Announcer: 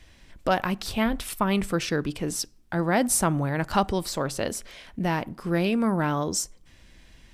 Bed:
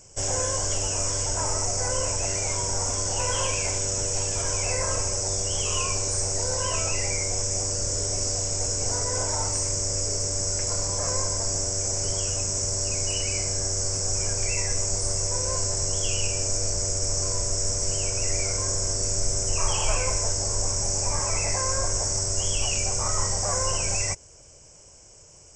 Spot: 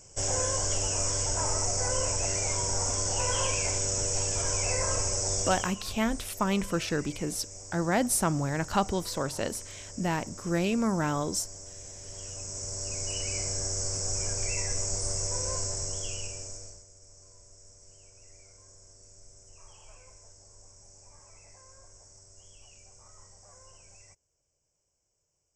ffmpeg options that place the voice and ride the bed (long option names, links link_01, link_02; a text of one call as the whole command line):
ffmpeg -i stem1.wav -i stem2.wav -filter_complex "[0:a]adelay=5000,volume=-3.5dB[link_01];[1:a]volume=10.5dB,afade=type=out:start_time=5.42:duration=0.33:silence=0.16788,afade=type=in:start_time=12.03:duration=1.41:silence=0.223872,afade=type=out:start_time=15.48:duration=1.37:silence=0.0668344[link_02];[link_01][link_02]amix=inputs=2:normalize=0" out.wav